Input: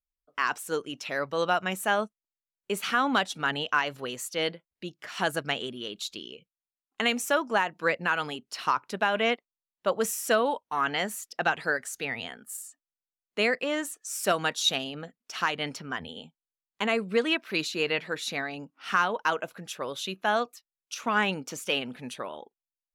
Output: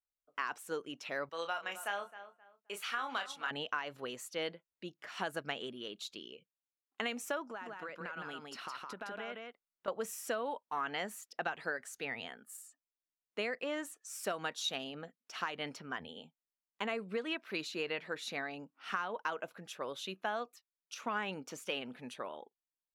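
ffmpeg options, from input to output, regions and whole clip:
ffmpeg -i in.wav -filter_complex "[0:a]asettb=1/sr,asplit=3[link_01][link_02][link_03];[link_01]atrim=end=1.294[link_04];[link_02]atrim=start=1.29:end=3.51,asetpts=PTS-STARTPTS,afade=type=in:duration=0.004:curve=qsin,afade=type=out:start_time=2.216:duration=0.004:curve=qsin,highpass=frequency=1200:poles=1,asplit=2[link_05][link_06];[link_06]adelay=30,volume=-7dB[link_07];[link_05][link_07]amix=inputs=2:normalize=0,atrim=end_sample=97902,asplit=2[link_08][link_09];[link_09]adelay=263,lowpass=frequency=2400:poles=1,volume=-15dB,asplit=2[link_10][link_11];[link_11]adelay=263,lowpass=frequency=2400:poles=1,volume=0.27,asplit=2[link_12][link_13];[link_13]adelay=263,lowpass=frequency=2400:poles=1,volume=0.27[link_14];[link_08][link_10][link_12][link_14]amix=inputs=4:normalize=0,atrim=end_sample=97902[link_15];[link_03]atrim=start=3.506[link_16];[link_04][link_15]acrossfade=duration=0.004:curve1=hsin:curve2=qsin[link_17];[link_17][link_16]acrossfade=duration=0.004:curve1=qsin:curve2=hsin,asettb=1/sr,asplit=3[link_18][link_19][link_20];[link_18]atrim=end=7.454[link_21];[link_19]atrim=start=7.45:end=9.88,asetpts=PTS-STARTPTS,afade=type=in:duration=0.004:curve=qsin,afade=type=out:start_time=2.426:duration=0.004:curve=qsin,equalizer=frequency=1400:width=5:gain=6.5,acompressor=threshold=-34dB:ratio=8:attack=3.2:release=140:knee=1:detection=peak,aecho=1:1:163:0.708,atrim=end_sample=107163[link_22];[link_20]atrim=start=9.876[link_23];[link_21][link_22]acrossfade=duration=0.004:curve1=hsin:curve2=qsin[link_24];[link_24][link_23]acrossfade=duration=0.004:curve1=qsin:curve2=hsin,equalizer=frequency=13000:width_type=o:width=2.6:gain=-6.5,acompressor=threshold=-27dB:ratio=6,lowshelf=frequency=150:gain=-10,volume=-5dB" out.wav

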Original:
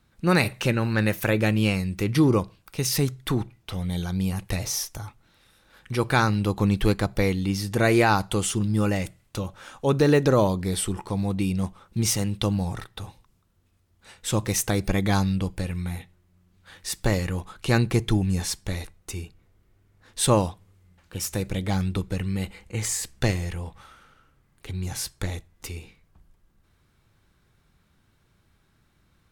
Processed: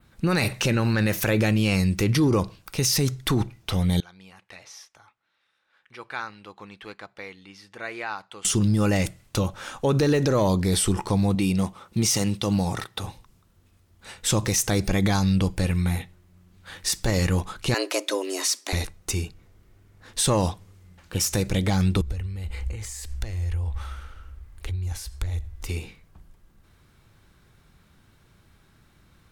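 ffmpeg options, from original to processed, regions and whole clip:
ffmpeg -i in.wav -filter_complex "[0:a]asettb=1/sr,asplit=3[link_01][link_02][link_03];[link_01]atrim=end=4.004[link_04];[link_02]atrim=start=4:end=8.45,asetpts=PTS-STARTPTS,afade=type=in:duration=0.004:curve=qsin,afade=type=out:start_time=4.446:duration=0.004:curve=qsin,lowpass=1800,aderivative[link_05];[link_03]atrim=start=8.446[link_06];[link_04][link_05]acrossfade=duration=0.004:curve1=hsin:curve2=qsin[link_07];[link_07][link_06]acrossfade=duration=0.004:curve1=qsin:curve2=hsin,asettb=1/sr,asplit=3[link_08][link_09][link_10];[link_08]atrim=end=11.354[link_11];[link_09]atrim=start=11.35:end=13.04,asetpts=PTS-STARTPTS,afade=type=in:duration=0.004:curve=qsin,afade=type=out:start_time=1.686:duration=0.004:curve=qsin,highpass=frequency=170:poles=1,bandreject=frequency=1600:width=18[link_12];[link_10]atrim=start=13.036[link_13];[link_11][link_12]acrossfade=duration=0.004:curve1=hsin:curve2=qsin[link_14];[link_14][link_13]acrossfade=duration=0.004:curve1=qsin:curve2=hsin,asettb=1/sr,asplit=3[link_15][link_16][link_17];[link_15]atrim=end=17.744[link_18];[link_16]atrim=start=17.74:end=18.73,asetpts=PTS-STARTPTS,afade=type=in:duration=0.004:curve=qsin,afade=type=out:start_time=0.986:duration=0.004:curve=qsin,highpass=frequency=760:poles=1,afreqshift=190[link_19];[link_17]atrim=start=18.726[link_20];[link_18][link_19]acrossfade=duration=0.004:curve1=hsin:curve2=qsin[link_21];[link_21][link_20]acrossfade=duration=0.004:curve1=qsin:curve2=hsin,asettb=1/sr,asplit=3[link_22][link_23][link_24];[link_22]atrim=end=22.014[link_25];[link_23]atrim=start=22.01:end=25.69,asetpts=PTS-STARTPTS,afade=type=in:duration=0.004:curve=qsin,afade=type=out:start_time=3.676:duration=0.004:curve=qsin,acompressor=threshold=-42dB:ratio=6:attack=3.2:release=140:knee=1:detection=peak,lowshelf=frequency=100:width_type=q:width=3:gain=13.5[link_26];[link_24]atrim=start=25.686[link_27];[link_25][link_26]acrossfade=duration=0.004:curve1=hsin:curve2=qsin[link_28];[link_28][link_27]acrossfade=duration=0.004:curve1=qsin:curve2=hsin,adynamicequalizer=threshold=0.00631:dfrequency=5700:dqfactor=1.5:tfrequency=5700:tqfactor=1.5:attack=5:release=100:ratio=0.375:range=3:mode=boostabove:tftype=bell,acontrast=66,alimiter=limit=-13.5dB:level=0:latency=1:release=49" out.wav

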